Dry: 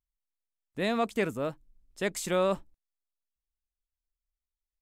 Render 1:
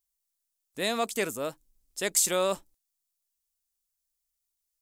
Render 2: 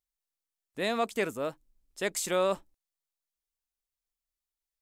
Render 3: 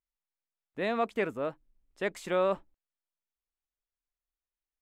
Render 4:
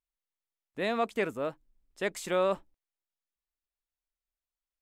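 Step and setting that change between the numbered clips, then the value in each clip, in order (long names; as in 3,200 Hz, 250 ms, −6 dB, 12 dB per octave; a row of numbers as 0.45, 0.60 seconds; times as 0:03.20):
bass and treble, treble: +15, +4, −14, −6 decibels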